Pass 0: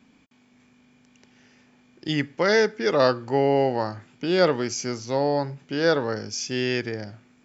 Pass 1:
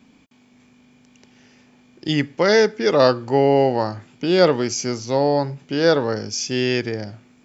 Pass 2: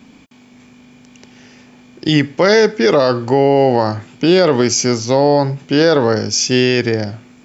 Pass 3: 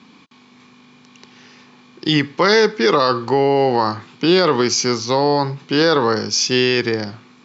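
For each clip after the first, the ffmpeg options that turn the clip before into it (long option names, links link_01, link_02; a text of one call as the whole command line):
ffmpeg -i in.wav -af "equalizer=frequency=1600:width=1.5:gain=-3.5,volume=5dB" out.wav
ffmpeg -i in.wav -af "alimiter=level_in=10.5dB:limit=-1dB:release=50:level=0:latency=1,volume=-1dB" out.wav
ffmpeg -i in.wav -af "highpass=150,equalizer=frequency=260:width_type=q:width=4:gain=-4,equalizer=frequency=610:width_type=q:width=4:gain=-9,equalizer=frequency=1100:width_type=q:width=4:gain=9,equalizer=frequency=4000:width_type=q:width=4:gain=7,lowpass=frequency=6300:width=0.5412,lowpass=frequency=6300:width=1.3066,volume=-1.5dB" out.wav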